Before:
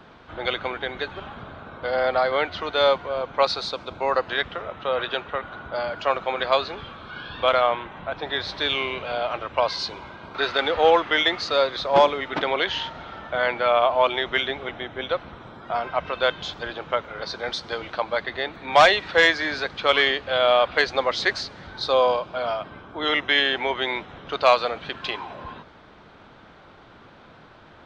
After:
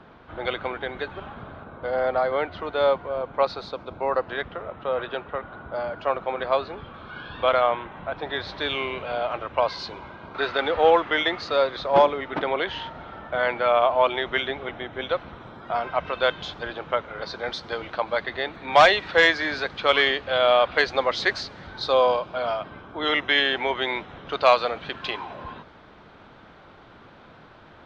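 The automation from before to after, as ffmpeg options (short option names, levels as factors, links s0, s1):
-af "asetnsamples=n=441:p=0,asendcmd='1.64 lowpass f 1100;6.94 lowpass f 2300;12.02 lowpass f 1600;13.33 lowpass f 2800;14.93 lowpass f 5100;16.45 lowpass f 3400;18.07 lowpass f 5500',lowpass=f=2000:p=1"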